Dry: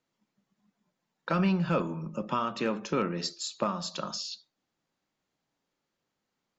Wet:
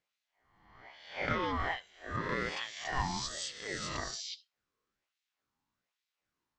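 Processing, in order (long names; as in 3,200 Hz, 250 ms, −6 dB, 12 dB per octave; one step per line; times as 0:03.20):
peak hold with a rise ahead of every peak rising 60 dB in 1.18 s
auto-filter high-pass sine 1.2 Hz 300–3,000 Hz
ring modulator whose carrier an LFO sweeps 650 Hz, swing 20%, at 0.82 Hz
level −5.5 dB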